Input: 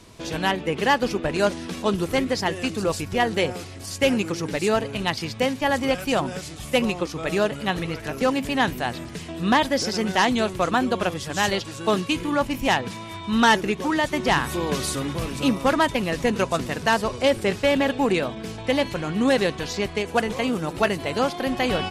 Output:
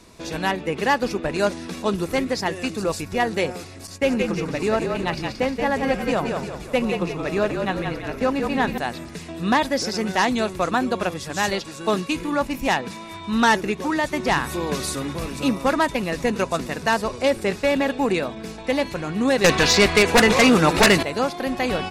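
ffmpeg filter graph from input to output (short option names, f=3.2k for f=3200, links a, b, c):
-filter_complex "[0:a]asettb=1/sr,asplit=3[a][b][c];[a]atrim=end=3.874[d];[b]atrim=start=3.87:end=8.78,asetpts=PTS-STARTPTS,afade=t=in:d=0.004:c=qsin,afade=t=out:st=4.906:d=0.004:c=qsin,agate=range=-33dB:threshold=-33dB:ratio=3:release=100:detection=peak,highshelf=f=3.9k:g=-8.5,asplit=7[e][f][g][h][i][j][k];[f]adelay=176,afreqshift=-41,volume=-5dB[l];[g]adelay=352,afreqshift=-82,volume=-11.4dB[m];[h]adelay=528,afreqshift=-123,volume=-17.8dB[n];[i]adelay=704,afreqshift=-164,volume=-24.1dB[o];[j]adelay=880,afreqshift=-205,volume=-30.5dB[p];[k]adelay=1056,afreqshift=-246,volume=-36.9dB[q];[e][l][m][n][o][p][q]amix=inputs=7:normalize=0,atrim=end_sample=216531[r];[c]atrim=start=8.776[s];[d][r]acrossfade=d=0.004:c1=hsin:c2=qsin[t];[t][s]acrossfade=d=0.004:c1=qsin:c2=hsin,asettb=1/sr,asplit=3[u][v][w];[u]atrim=end=19.444[x];[v]atrim=start=19.44:end=21.03,asetpts=PTS-STARTPTS,afade=t=in:d=0.004:c=qsin,afade=t=out:st=1.586:d=0.004:c=qsin,lowpass=f=1.8k:p=1,tiltshelf=f=1.3k:g=-7.5,aeval=exprs='0.376*sin(PI/2*5.01*val(0)/0.376)':c=same[y];[w]atrim=start=21.026[z];[x][y]acrossfade=d=0.004:c1=hsin:c2=qsin[aa];[aa][z]acrossfade=d=0.004:c1=qsin:c2=hsin,equalizer=f=110:t=o:w=0.22:g=-15,bandreject=f=3.1k:w=9.4"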